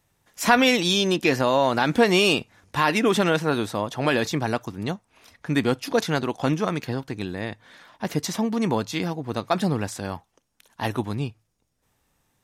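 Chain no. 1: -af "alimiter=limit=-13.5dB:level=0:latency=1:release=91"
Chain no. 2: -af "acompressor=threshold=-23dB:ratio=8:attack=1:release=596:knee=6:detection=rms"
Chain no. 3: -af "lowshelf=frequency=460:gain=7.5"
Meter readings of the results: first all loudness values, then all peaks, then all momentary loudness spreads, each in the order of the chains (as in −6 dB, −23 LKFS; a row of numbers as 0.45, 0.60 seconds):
−26.5, −33.5, −20.0 LKFS; −13.5, −17.5, −3.0 dBFS; 10, 8, 11 LU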